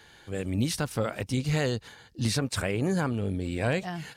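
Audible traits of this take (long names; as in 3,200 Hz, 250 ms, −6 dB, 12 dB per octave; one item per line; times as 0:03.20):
background noise floor −55 dBFS
spectral slope −5.5 dB per octave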